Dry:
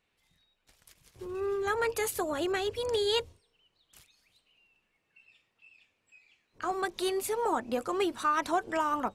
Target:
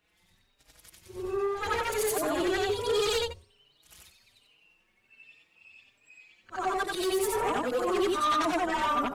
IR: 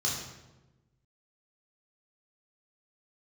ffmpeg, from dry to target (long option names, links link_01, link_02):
-filter_complex "[0:a]afftfilt=real='re':imag='-im':win_size=8192:overlap=0.75,aeval=exprs='0.0891*sin(PI/2*2.82*val(0)/0.0891)':channel_layout=same,asplit=2[link_01][link_02];[link_02]adelay=4.5,afreqshift=1.3[link_03];[link_01][link_03]amix=inputs=2:normalize=1"